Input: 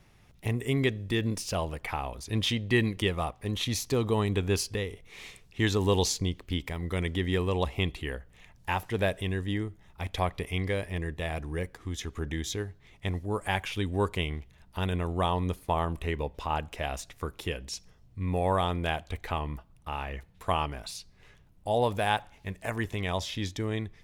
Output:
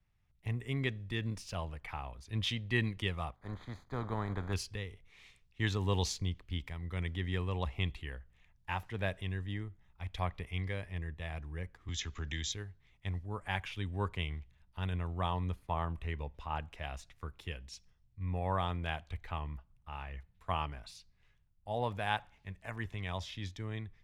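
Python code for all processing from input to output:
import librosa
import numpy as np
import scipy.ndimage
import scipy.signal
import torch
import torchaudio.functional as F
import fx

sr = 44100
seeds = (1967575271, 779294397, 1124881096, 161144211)

y = fx.spec_flatten(x, sr, power=0.49, at=(3.34, 4.52), fade=0.02)
y = fx.moving_average(y, sr, points=16, at=(3.34, 4.52), fade=0.02)
y = fx.chain(y, sr, fx.brickwall_lowpass(high_hz=7700.0),
    fx.high_shelf(hz=2000.0, db=9.0),
    fx.band_squash(depth_pct=70), at=(11.88, 12.52))
y = fx.lowpass(y, sr, hz=2200.0, slope=6)
y = fx.peak_eq(y, sr, hz=400.0, db=-10.0, octaves=2.4)
y = fx.band_widen(y, sr, depth_pct=40)
y = y * 10.0 ** (-2.5 / 20.0)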